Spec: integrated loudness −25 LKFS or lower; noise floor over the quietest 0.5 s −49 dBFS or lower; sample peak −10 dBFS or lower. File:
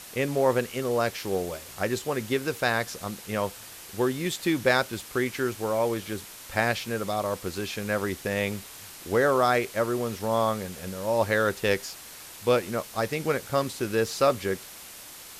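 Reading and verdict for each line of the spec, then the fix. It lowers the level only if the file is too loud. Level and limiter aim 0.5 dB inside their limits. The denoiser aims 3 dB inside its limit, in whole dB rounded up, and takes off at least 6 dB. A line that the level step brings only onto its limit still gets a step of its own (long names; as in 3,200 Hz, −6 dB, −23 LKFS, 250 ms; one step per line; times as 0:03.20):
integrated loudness −27.5 LKFS: in spec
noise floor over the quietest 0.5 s −45 dBFS: out of spec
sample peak −8.5 dBFS: out of spec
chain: broadband denoise 7 dB, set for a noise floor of −45 dBFS
brickwall limiter −10.5 dBFS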